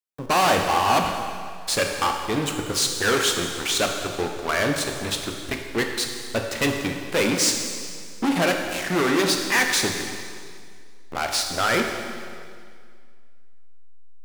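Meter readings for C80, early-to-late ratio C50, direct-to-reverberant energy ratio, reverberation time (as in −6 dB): 5.5 dB, 4.5 dB, 2.5 dB, 2.1 s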